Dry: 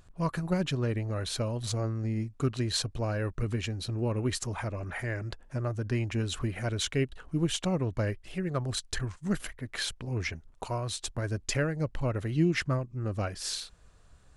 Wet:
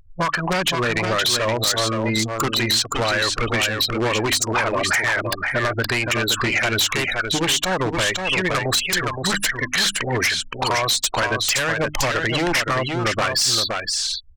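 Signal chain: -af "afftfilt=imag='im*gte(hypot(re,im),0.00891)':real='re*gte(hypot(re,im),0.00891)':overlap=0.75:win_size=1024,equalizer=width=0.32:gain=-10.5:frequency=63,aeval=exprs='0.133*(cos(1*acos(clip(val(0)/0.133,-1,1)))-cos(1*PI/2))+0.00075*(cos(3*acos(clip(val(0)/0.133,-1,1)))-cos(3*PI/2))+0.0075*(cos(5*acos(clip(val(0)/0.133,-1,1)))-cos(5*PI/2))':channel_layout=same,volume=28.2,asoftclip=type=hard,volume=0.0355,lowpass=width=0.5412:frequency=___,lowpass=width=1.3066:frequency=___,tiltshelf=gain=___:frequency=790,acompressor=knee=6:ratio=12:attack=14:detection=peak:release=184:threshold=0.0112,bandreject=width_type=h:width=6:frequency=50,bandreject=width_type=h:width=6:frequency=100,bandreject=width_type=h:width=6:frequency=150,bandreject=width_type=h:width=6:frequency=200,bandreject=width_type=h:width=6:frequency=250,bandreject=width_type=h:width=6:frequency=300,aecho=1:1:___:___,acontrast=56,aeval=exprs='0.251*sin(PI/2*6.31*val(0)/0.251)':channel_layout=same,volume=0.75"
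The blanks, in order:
8400, 8400, -10, 519, 0.501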